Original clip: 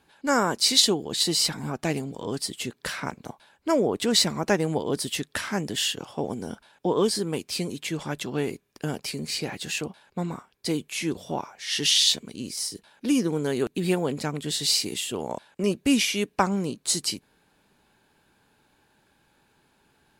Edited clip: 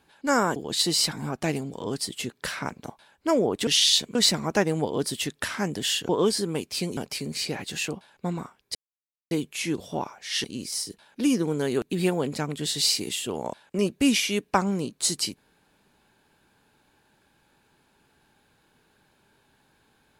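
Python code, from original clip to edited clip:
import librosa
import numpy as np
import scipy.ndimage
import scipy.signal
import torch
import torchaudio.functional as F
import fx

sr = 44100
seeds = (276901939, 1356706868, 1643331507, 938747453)

y = fx.edit(x, sr, fx.cut(start_s=0.56, length_s=0.41),
    fx.cut(start_s=6.02, length_s=0.85),
    fx.cut(start_s=7.75, length_s=1.15),
    fx.insert_silence(at_s=10.68, length_s=0.56),
    fx.move(start_s=11.81, length_s=0.48, to_s=4.08), tone=tone)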